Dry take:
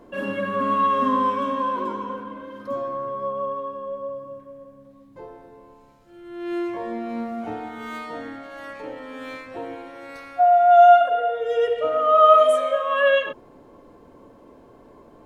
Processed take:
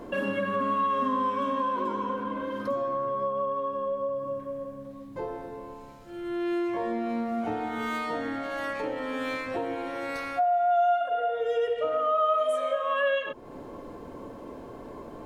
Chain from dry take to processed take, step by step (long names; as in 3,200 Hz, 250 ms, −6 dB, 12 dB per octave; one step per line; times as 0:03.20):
downward compressor 3 to 1, threshold −36 dBFS, peak gain reduction 20 dB
level +7 dB